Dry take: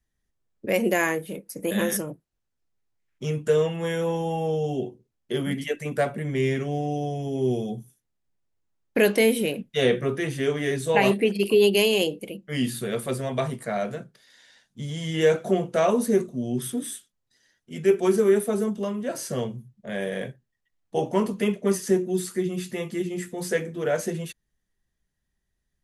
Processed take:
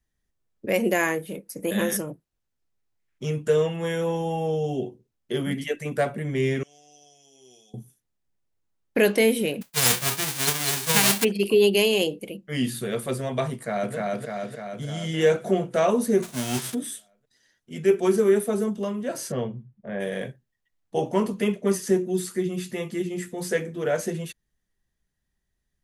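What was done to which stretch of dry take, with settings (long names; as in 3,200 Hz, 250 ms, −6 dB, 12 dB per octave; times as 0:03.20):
0:06.63–0:07.74: resonant band-pass 6,000 Hz, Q 2.1
0:09.61–0:11.23: spectral envelope flattened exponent 0.1
0:13.53–0:13.95: delay throw 300 ms, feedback 65%, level −1 dB
0:16.22–0:16.73: spectral envelope flattened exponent 0.3
0:19.31–0:19.99: low-pass filter 3,000 Hz → 1,600 Hz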